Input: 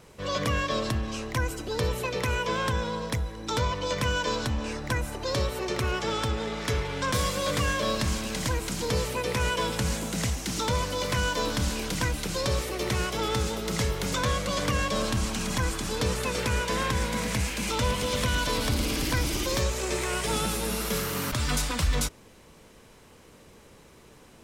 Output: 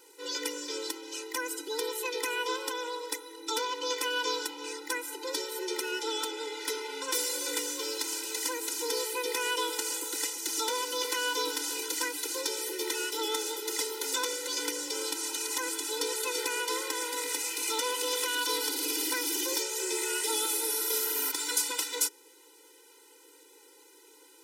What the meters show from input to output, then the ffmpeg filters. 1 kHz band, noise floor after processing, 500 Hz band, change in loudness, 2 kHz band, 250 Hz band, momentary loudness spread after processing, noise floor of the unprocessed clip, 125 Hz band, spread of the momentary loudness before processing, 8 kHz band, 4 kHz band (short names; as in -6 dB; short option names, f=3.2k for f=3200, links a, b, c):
-5.0 dB, -57 dBFS, -4.5 dB, -2.5 dB, -4.0 dB, -10.0 dB, 7 LU, -53 dBFS, under -40 dB, 3 LU, +3.0 dB, -0.5 dB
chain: -af "crystalizer=i=2.5:c=0,afftfilt=real='re*eq(mod(floor(b*sr/1024/260),2),1)':imag='im*eq(mod(floor(b*sr/1024/260),2),1)':win_size=1024:overlap=0.75,volume=-3.5dB"